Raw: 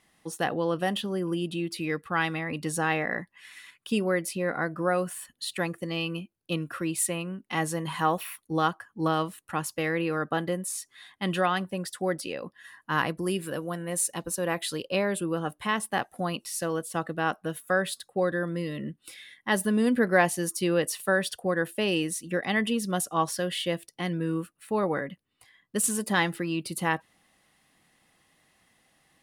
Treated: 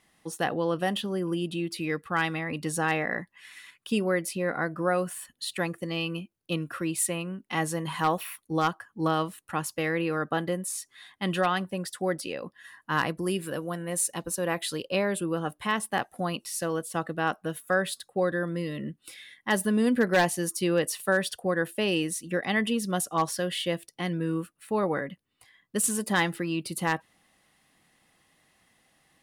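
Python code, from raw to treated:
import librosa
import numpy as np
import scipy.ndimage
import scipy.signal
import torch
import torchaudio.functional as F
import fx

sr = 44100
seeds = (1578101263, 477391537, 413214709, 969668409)

y = 10.0 ** (-14.0 / 20.0) * (np.abs((x / 10.0 ** (-14.0 / 20.0) + 3.0) % 4.0 - 2.0) - 1.0)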